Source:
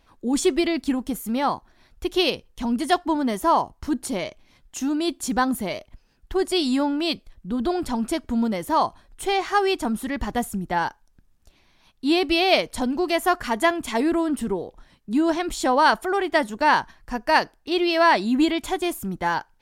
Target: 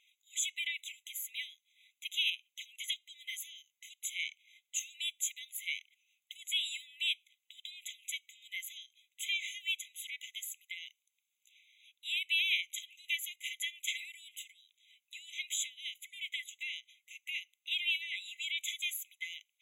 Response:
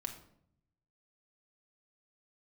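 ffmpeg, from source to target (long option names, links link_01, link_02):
-af "acompressor=threshold=-21dB:ratio=6,afftfilt=real='re*eq(mod(floor(b*sr/1024/2000),2),1)':imag='im*eq(mod(floor(b*sr/1024/2000),2),1)':win_size=1024:overlap=0.75"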